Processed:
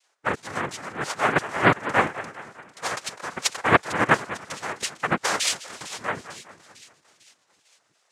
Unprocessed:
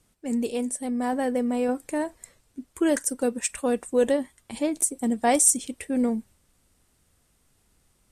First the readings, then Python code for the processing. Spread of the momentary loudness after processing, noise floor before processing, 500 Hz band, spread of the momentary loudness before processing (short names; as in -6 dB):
15 LU, -67 dBFS, -3.0 dB, 11 LU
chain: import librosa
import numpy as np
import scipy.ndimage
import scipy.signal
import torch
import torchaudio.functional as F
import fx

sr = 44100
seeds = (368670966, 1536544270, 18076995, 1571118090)

y = fx.filter_lfo_highpass(x, sr, shape='saw_down', hz=2.9, low_hz=360.0, high_hz=2600.0, q=5.5)
y = fx.echo_split(y, sr, split_hz=2000.0, low_ms=202, high_ms=450, feedback_pct=52, wet_db=-13.5)
y = fx.noise_vocoder(y, sr, seeds[0], bands=3)
y = F.gain(torch.from_numpy(y), -1.0).numpy()